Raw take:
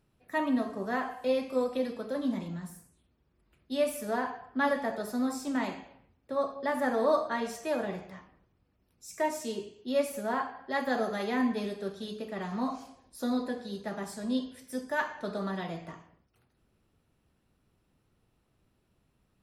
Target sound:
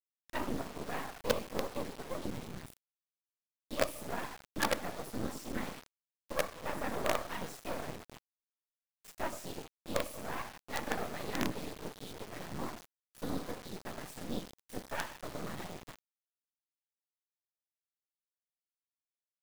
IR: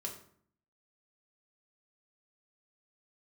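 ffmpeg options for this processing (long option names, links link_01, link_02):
-af "aeval=exprs='0.188*(cos(1*acos(clip(val(0)/0.188,-1,1)))-cos(1*PI/2))+0.00133*(cos(6*acos(clip(val(0)/0.188,-1,1)))-cos(6*PI/2))':channel_layout=same,afftfilt=real='hypot(re,im)*cos(2*PI*random(0))':imag='hypot(re,im)*sin(2*PI*random(1))':win_size=512:overlap=0.75,acrusher=bits=5:dc=4:mix=0:aa=0.000001,volume=2dB"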